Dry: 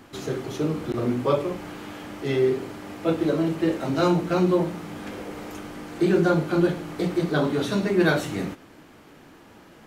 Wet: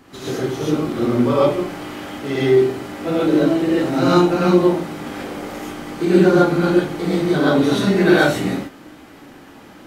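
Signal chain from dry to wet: gated-style reverb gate 160 ms rising, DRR -7.5 dB; trim -1 dB

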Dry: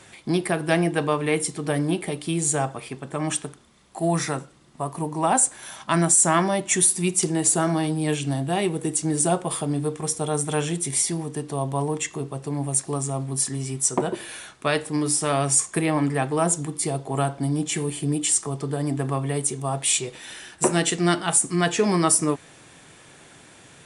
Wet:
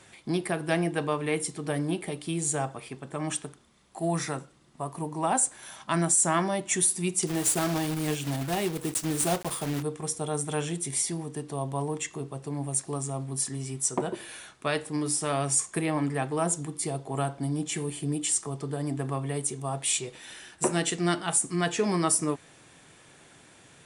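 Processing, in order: 7.27–9.83 s: block-companded coder 3-bit; trim -5.5 dB

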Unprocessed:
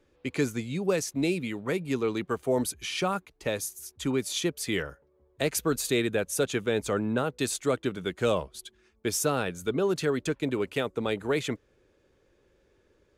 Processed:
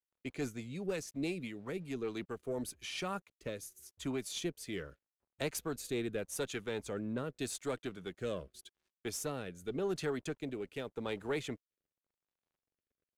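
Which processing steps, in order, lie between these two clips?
single-diode clipper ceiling -19.5 dBFS; crossover distortion -59.5 dBFS; rotary cabinet horn 6 Hz, later 0.85 Hz, at 1.48 s; trim -7 dB

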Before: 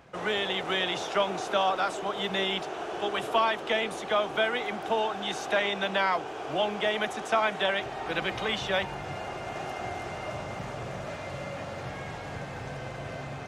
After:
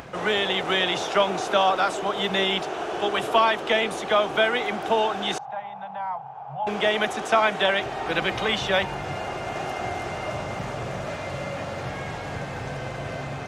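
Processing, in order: 5.38–6.67 s: two resonant band-passes 340 Hz, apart 2.6 oct; upward compressor, threshold -39 dBFS; trim +5.5 dB

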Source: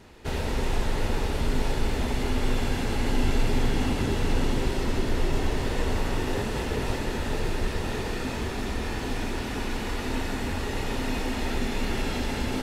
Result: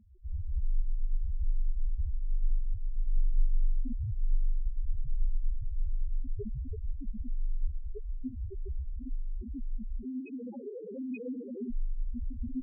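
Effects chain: 10.05–11.68 s: cabinet simulation 190–3700 Hz, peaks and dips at 530 Hz +6 dB, 1.4 kHz -9 dB, 2.3 kHz +7 dB; loudest bins only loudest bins 1; trim +4 dB

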